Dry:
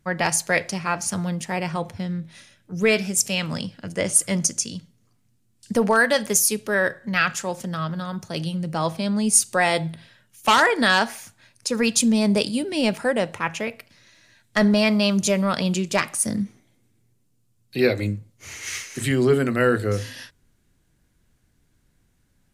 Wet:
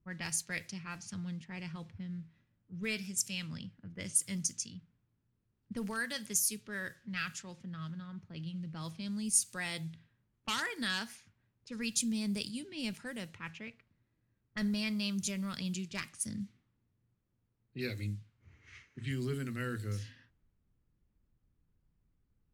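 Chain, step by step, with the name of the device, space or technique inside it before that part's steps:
cassette deck with a dynamic noise filter (white noise bed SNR 29 dB; low-pass that shuts in the quiet parts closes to 550 Hz, open at −18 dBFS)
guitar amp tone stack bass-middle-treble 6-0-2
level +3 dB

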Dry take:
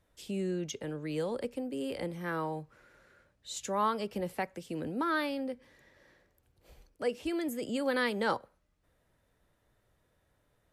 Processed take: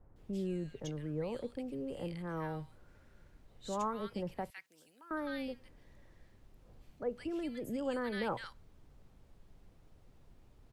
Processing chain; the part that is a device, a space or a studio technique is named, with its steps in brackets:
car interior (parametric band 130 Hz +8.5 dB 0.74 octaves; high-shelf EQ 3,800 Hz −7 dB; brown noise bed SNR 17 dB)
0:04.50–0:05.11: first difference
multiband delay without the direct sound lows, highs 160 ms, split 1,600 Hz
level −5 dB

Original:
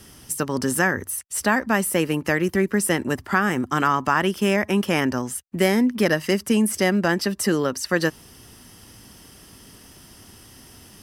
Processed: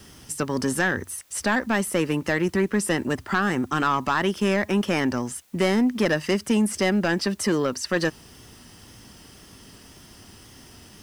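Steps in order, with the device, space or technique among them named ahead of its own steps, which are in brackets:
compact cassette (soft clipping −13 dBFS, distortion −15 dB; low-pass filter 8,500 Hz 12 dB per octave; tape wow and flutter 29 cents; white noise bed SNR 35 dB)

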